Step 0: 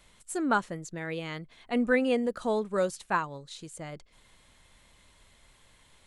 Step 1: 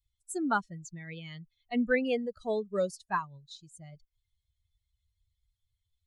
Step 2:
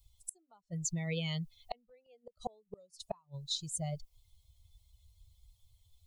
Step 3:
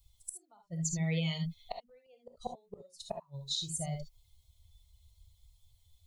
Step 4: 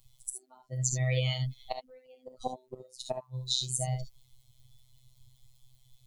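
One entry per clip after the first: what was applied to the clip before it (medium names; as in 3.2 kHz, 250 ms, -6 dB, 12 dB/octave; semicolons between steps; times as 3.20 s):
expander on every frequency bin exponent 2
compression 2:1, threshold -46 dBFS, peak gain reduction 13.5 dB; inverted gate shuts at -36 dBFS, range -35 dB; static phaser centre 670 Hz, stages 4; trim +16 dB
gated-style reverb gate 90 ms rising, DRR 4 dB
robot voice 128 Hz; trim +7 dB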